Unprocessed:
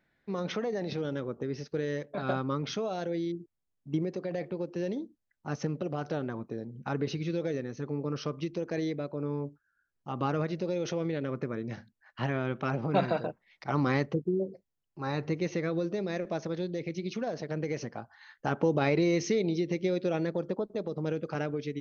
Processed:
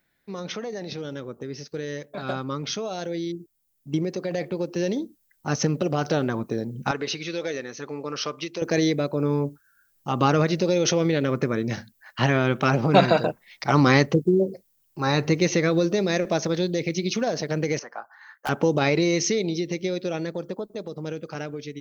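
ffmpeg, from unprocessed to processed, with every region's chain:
ffmpeg -i in.wav -filter_complex "[0:a]asettb=1/sr,asplit=3[link_01][link_02][link_03];[link_01]atrim=end=6.914[link_04];[link_02]atrim=start=6.91:end=8.62,asetpts=PTS-STARTPTS,afade=type=in:duration=0.004:curve=qsin,afade=type=out:start_time=1.706:duration=0.004:curve=qsin,highpass=frequency=1000:poles=1,aemphasis=mode=reproduction:type=cd[link_05];[link_03]atrim=start=8.616[link_06];[link_04][link_05]acrossfade=duration=0.004:curve1=hsin:curve2=qsin[link_07];[link_07][link_06]acrossfade=duration=0.004:curve1=qsin:curve2=hsin,asettb=1/sr,asplit=3[link_08][link_09][link_10];[link_08]atrim=end=17.794[link_11];[link_09]atrim=start=17.79:end=18.49,asetpts=PTS-STARTPTS,afade=type=in:duration=0.004:curve=qsin,afade=type=out:start_time=0.696:duration=0.004:curve=qsin,highpass=770,highshelf=frequency=2100:width_type=q:width=1.5:gain=-12.5,volume=29.5dB,asoftclip=hard,volume=-29.5dB[link_12];[link_10]atrim=start=18.486[link_13];[link_11][link_12]acrossfade=duration=0.004:curve1=hsin:curve2=qsin[link_14];[link_14][link_13]acrossfade=duration=0.004:curve1=qsin:curve2=hsin,aemphasis=mode=production:type=75fm,dynaudnorm=framelen=690:gausssize=13:maxgain=11.5dB" out.wav

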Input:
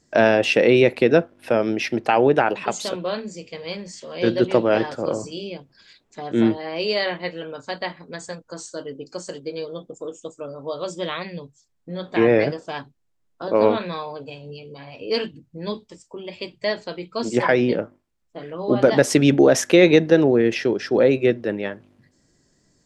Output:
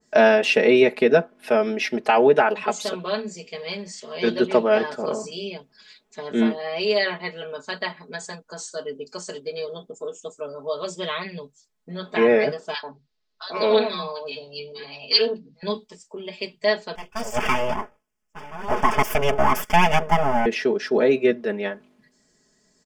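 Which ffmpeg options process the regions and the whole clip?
ffmpeg -i in.wav -filter_complex "[0:a]asettb=1/sr,asplit=3[link_01][link_02][link_03];[link_01]atrim=end=12.744[link_04];[link_02]atrim=start=12.74:end=15.63,asetpts=PTS-STARTPTS,afade=type=in:duration=0.004:curve=qsin,afade=type=out:start_time=2.886:duration=0.004:curve=qsin,lowpass=frequency=4500:width_type=q:width=3.5,acrossover=split=170|960[link_05][link_06][link_07];[link_06]adelay=90[link_08];[link_05]adelay=140[link_09];[link_09][link_08][link_07]amix=inputs=3:normalize=0,atrim=end_sample=127449[link_10];[link_03]atrim=start=15.626[link_11];[link_04][link_10]acrossfade=duration=0.004:curve1=hsin:curve2=qsin[link_12];[link_12][link_11]acrossfade=duration=0.004:curve1=qsin:curve2=hsin,asettb=1/sr,asplit=3[link_13][link_14][link_15];[link_13]atrim=end=16.954[link_16];[link_14]atrim=start=16.95:end=20.46,asetpts=PTS-STARTPTS,afade=type=in:duration=0.004:curve=qsin,afade=type=out:start_time=3.506:duration=0.004:curve=qsin,aeval=exprs='abs(val(0))':channel_layout=same,asuperstop=centerf=4000:order=4:qfactor=2.8[link_17];[link_15]atrim=start=20.456[link_18];[link_16][link_17]acrossfade=duration=0.004:curve1=hsin:curve2=qsin[link_19];[link_19][link_18]acrossfade=duration=0.004:curve1=qsin:curve2=hsin,lowshelf=frequency=210:gain=-10,aecho=1:1:4.7:0.92,adynamicequalizer=threshold=0.0251:dfrequency=2100:dqfactor=0.7:tfrequency=2100:tqfactor=0.7:attack=5:release=100:ratio=0.375:range=2:mode=cutabove:tftype=highshelf,volume=-1dB" out.wav

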